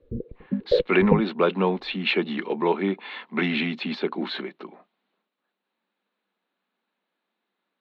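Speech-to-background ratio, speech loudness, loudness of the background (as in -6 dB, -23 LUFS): 1.5 dB, -25.0 LUFS, -26.5 LUFS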